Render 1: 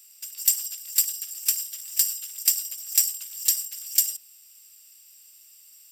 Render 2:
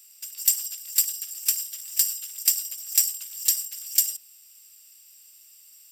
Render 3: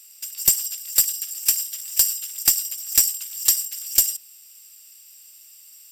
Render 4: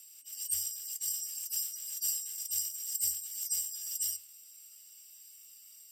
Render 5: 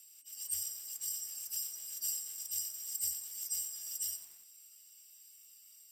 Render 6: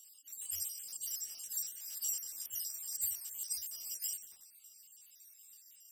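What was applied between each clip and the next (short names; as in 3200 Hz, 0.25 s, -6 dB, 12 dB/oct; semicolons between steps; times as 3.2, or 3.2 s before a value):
nothing audible
one-sided clip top -13 dBFS; gain +4.5 dB
median-filter separation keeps harmonic; flange 0.56 Hz, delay 9.5 ms, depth 4.2 ms, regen +69%; frequency shift +81 Hz
lo-fi delay 91 ms, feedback 55%, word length 8-bit, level -11.5 dB; gain -4 dB
random spectral dropouts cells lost 44%; gain +2 dB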